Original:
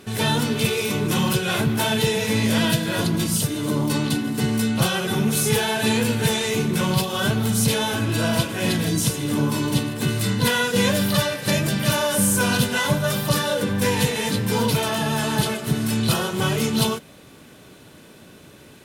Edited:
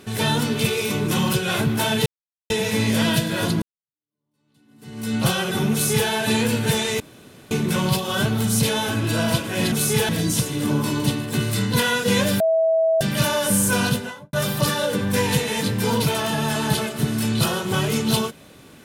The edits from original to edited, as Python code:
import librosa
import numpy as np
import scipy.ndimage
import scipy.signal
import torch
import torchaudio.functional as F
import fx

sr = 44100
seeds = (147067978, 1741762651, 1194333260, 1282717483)

y = fx.studio_fade_out(x, sr, start_s=12.48, length_s=0.53)
y = fx.edit(y, sr, fx.insert_silence(at_s=2.06, length_s=0.44),
    fx.fade_in_span(start_s=3.18, length_s=1.53, curve='exp'),
    fx.duplicate(start_s=5.28, length_s=0.37, to_s=8.77),
    fx.insert_room_tone(at_s=6.56, length_s=0.51),
    fx.bleep(start_s=11.08, length_s=0.61, hz=650.0, db=-15.0), tone=tone)